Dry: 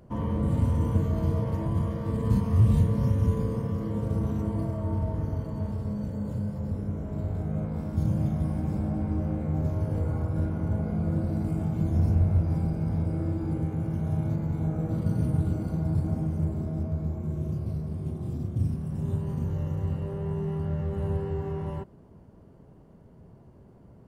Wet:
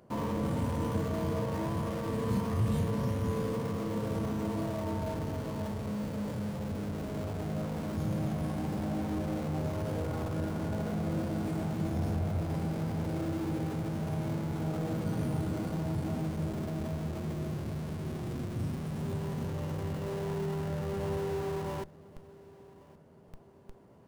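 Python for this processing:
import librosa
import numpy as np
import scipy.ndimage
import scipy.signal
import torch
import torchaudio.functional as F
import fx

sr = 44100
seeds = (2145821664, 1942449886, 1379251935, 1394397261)

p1 = fx.highpass(x, sr, hz=370.0, slope=6)
p2 = fx.schmitt(p1, sr, flips_db=-47.5)
p3 = p1 + (p2 * librosa.db_to_amplitude(-7.0))
y = fx.echo_feedback(p3, sr, ms=1117, feedback_pct=38, wet_db=-22.0)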